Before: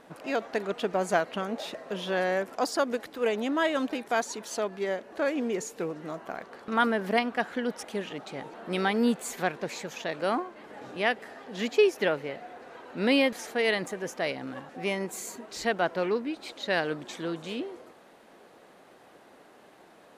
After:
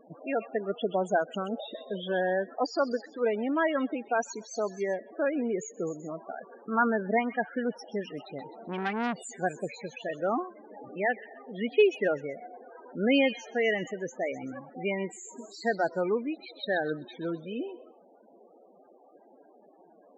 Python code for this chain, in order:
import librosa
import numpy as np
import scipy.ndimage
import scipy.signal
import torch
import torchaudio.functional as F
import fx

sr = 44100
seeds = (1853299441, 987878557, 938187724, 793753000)

y = fx.spec_topn(x, sr, count=16)
y = fx.echo_stepped(y, sr, ms=128, hz=3500.0, octaves=0.7, feedback_pct=70, wet_db=-8.5)
y = fx.transformer_sat(y, sr, knee_hz=1300.0, at=(8.38, 9.39))